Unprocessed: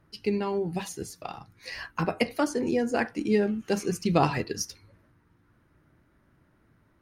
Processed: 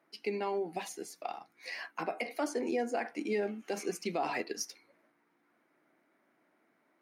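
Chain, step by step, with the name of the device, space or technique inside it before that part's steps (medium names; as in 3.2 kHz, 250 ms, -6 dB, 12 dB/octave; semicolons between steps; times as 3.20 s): laptop speaker (high-pass 250 Hz 24 dB/octave; peaking EQ 710 Hz +8 dB 0.44 oct; peaking EQ 2.2 kHz +8 dB 0.29 oct; peak limiter -18 dBFS, peak gain reduction 11 dB); trim -5.5 dB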